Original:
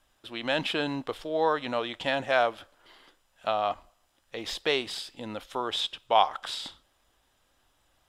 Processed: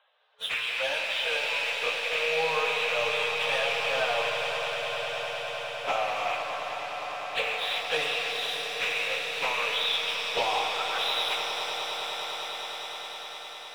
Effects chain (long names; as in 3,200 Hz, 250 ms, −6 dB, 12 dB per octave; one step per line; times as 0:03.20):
loose part that buzzes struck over −51 dBFS, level −18 dBFS
brick-wall band-pass 430–4,100 Hz
leveller curve on the samples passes 2
downward compressor 12 to 1, threshold −33 dBFS, peak gain reduction 20 dB
time stretch by phase vocoder 1.7×
on a send: echo that builds up and dies away 102 ms, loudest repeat 8, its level −14 dB
on the sum: reverb with rising layers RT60 3.6 s, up +7 semitones, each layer −8 dB, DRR 2.5 dB
level +8.5 dB